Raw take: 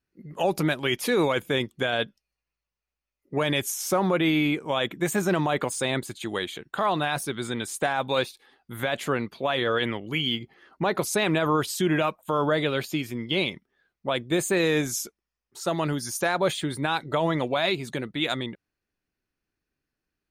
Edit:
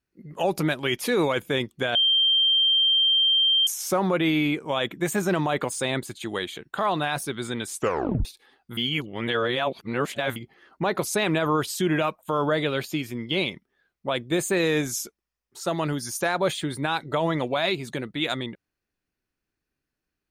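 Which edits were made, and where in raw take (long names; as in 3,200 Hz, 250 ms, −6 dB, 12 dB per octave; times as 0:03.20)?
0:01.95–0:03.67: beep over 3,160 Hz −17 dBFS
0:07.74: tape stop 0.51 s
0:08.77–0:10.36: reverse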